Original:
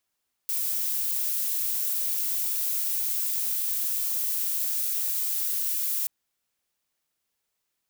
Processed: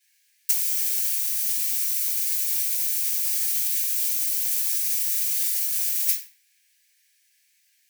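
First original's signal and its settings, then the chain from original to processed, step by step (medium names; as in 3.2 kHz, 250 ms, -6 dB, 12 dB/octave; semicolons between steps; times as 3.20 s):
noise violet, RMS -27.5 dBFS 5.58 s
simulated room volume 60 m³, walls mixed, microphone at 3.1 m; compressor with a negative ratio -20 dBFS, ratio -0.5; rippled Chebyshev high-pass 1.6 kHz, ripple 3 dB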